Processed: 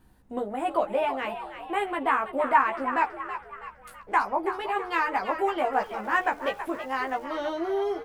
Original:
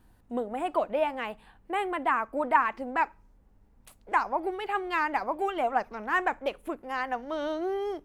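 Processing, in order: 5.72–7.22 s: crackle 580 per s -48 dBFS; doubling 15 ms -2.5 dB; frequency-shifting echo 326 ms, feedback 47%, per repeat +78 Hz, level -10.5 dB

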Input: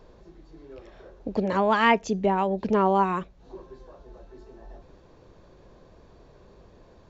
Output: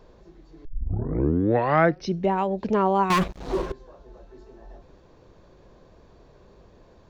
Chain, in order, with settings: 0.65 s: tape start 1.66 s; 3.10–3.72 s: waveshaping leveller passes 5

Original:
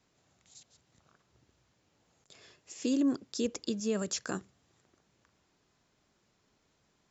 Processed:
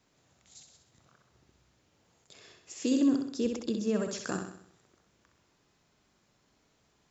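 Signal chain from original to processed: 3.29–4.18 s: treble shelf 3.6 kHz -10.5 dB; on a send: flutter echo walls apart 11 m, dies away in 0.64 s; on the sum: trim +1.5 dB

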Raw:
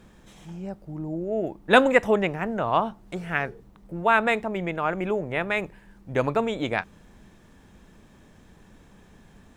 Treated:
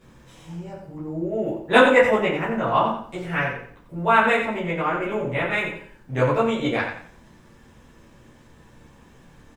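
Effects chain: feedback delay 88 ms, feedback 30%, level -8 dB; reverberation RT60 0.35 s, pre-delay 8 ms, DRR -9 dB; trim -6.5 dB

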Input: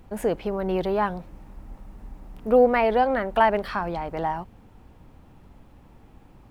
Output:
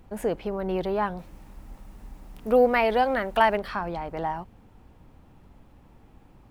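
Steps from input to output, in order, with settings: 1.18–3.56 s: treble shelf 2.3 kHz +9 dB; trim -2.5 dB

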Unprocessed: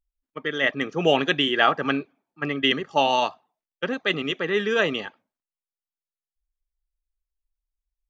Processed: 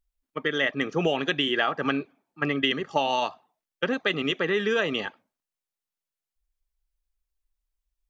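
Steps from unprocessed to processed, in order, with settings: compression 6:1, threshold -24 dBFS, peak gain reduction 11 dB; trim +3 dB

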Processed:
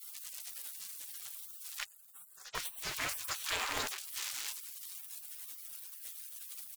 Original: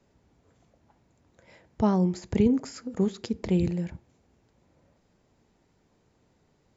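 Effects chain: jump at every zero crossing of -37 dBFS; 1.83–2.55 s: elliptic band-pass 2.2–6 kHz, stop band 60 dB; Chebyshev shaper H 2 -15 dB, 4 -31 dB, 5 -11 dB, 7 -43 dB, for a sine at -14 dBFS; delay 656 ms -12 dB; spectral gate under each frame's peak -30 dB weak; trim +6 dB

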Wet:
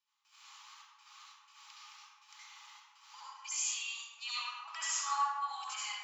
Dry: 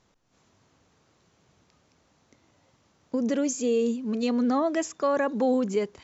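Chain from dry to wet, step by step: tilt EQ +1.5 dB/octave; in parallel at +2.5 dB: compressor with a negative ratio -32 dBFS; on the sum: peak limiter -22 dBFS, peak gain reduction 11.5 dB; trance gate ".xx.x.xx.xx.x" 61 bpm -24 dB; rippled Chebyshev high-pass 820 Hz, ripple 9 dB; reverberation RT60 1.5 s, pre-delay 65 ms, DRR -8.5 dB; trim -4 dB

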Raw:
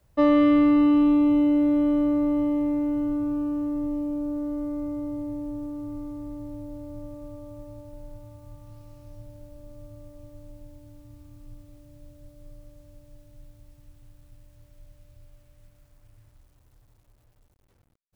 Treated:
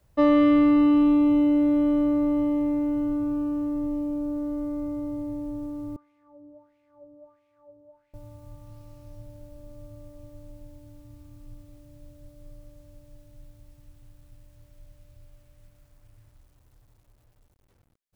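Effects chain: 5.96–8.14 s: wah-wah 1.5 Hz 400–2400 Hz, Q 4.6

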